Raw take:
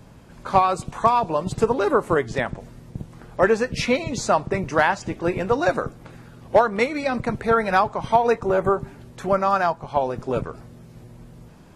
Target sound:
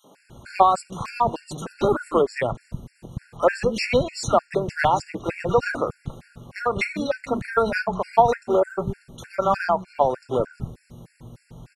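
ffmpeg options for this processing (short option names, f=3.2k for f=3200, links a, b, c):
-filter_complex "[0:a]acrossover=split=240|1500[a][b][c];[b]adelay=40[d];[a]adelay=210[e];[e][d][c]amix=inputs=3:normalize=0,afftfilt=real='re*gt(sin(2*PI*3.3*pts/sr)*(1-2*mod(floor(b*sr/1024/1400),2)),0)':imag='im*gt(sin(2*PI*3.3*pts/sr)*(1-2*mod(floor(b*sr/1024/1400),2)),0)':win_size=1024:overlap=0.75,volume=3dB"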